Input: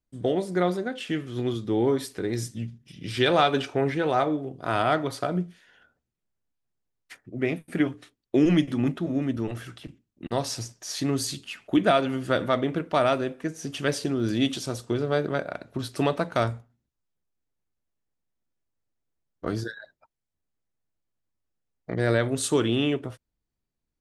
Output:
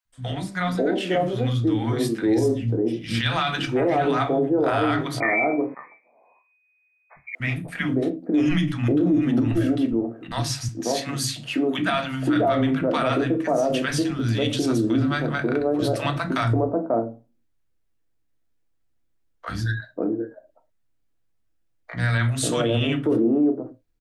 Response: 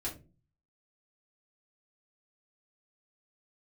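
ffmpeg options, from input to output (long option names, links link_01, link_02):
-filter_complex "[0:a]asplit=2[link_01][link_02];[1:a]atrim=start_sample=2205,afade=type=out:start_time=0.17:duration=0.01,atrim=end_sample=7938,lowpass=4200[link_03];[link_02][link_03]afir=irnorm=-1:irlink=0,volume=-3.5dB[link_04];[link_01][link_04]amix=inputs=2:normalize=0,asettb=1/sr,asplit=3[link_05][link_06][link_07];[link_05]atrim=end=5.204[link_08];[link_06]atrim=start=5.2:end=7.35,asetpts=PTS-STARTPTS,afade=type=in:duration=0.004:curve=qsin,afade=type=out:start_time=2.146:duration=0.004:curve=qsin,lowpass=frequency=2100:width_type=q:width=0.5098,lowpass=frequency=2100:width_type=q:width=0.6013,lowpass=frequency=2100:width_type=q:width=0.9,lowpass=frequency=2100:width_type=q:width=2.563,afreqshift=-2500[link_09];[link_07]atrim=start=7.346[link_10];[link_08][link_09]acrossfade=duration=0.004:curve1=hsin:curve2=qsin[link_11];[link_11][link_10]acrossfade=duration=0.004:curve1=qsin:curve2=hsin,asettb=1/sr,asplit=3[link_12][link_13][link_14];[link_12]atrim=end=10.634[link_15];[link_13]atrim=start=10.63:end=11.89,asetpts=PTS-STARTPTS,afade=type=in:duration=0.004:curve=qsin,afade=type=out:start_time=1.256:duration=0.004:curve=qsin,highpass=150[link_16];[link_14]atrim=start=11.886[link_17];[link_15][link_16]acrossfade=duration=0.004:curve1=hsin:curve2=qsin[link_18];[link_18][link_17]acrossfade=duration=0.004:curve1=qsin:curve2=hsin,acrossover=split=200|840[link_19][link_20][link_21];[link_19]adelay=50[link_22];[link_20]adelay=540[link_23];[link_22][link_23][link_21]amix=inputs=3:normalize=0,alimiter=limit=-16.5dB:level=0:latency=1:release=35,volume=3.5dB"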